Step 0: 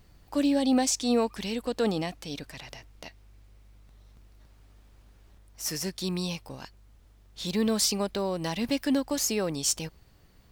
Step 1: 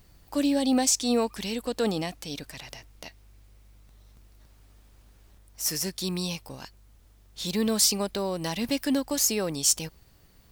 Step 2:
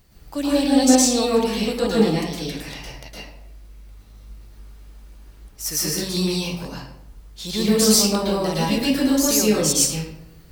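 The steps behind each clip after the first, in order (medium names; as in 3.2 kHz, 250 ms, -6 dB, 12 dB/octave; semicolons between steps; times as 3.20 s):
treble shelf 6.1 kHz +8 dB
reverberation RT60 0.80 s, pre-delay 106 ms, DRR -7 dB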